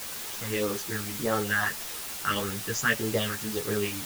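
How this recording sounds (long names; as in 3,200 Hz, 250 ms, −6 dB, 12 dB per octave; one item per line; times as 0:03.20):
phaser sweep stages 4, 1.7 Hz, lowest notch 450–3,900 Hz
a quantiser's noise floor 6 bits, dither triangular
a shimmering, thickened sound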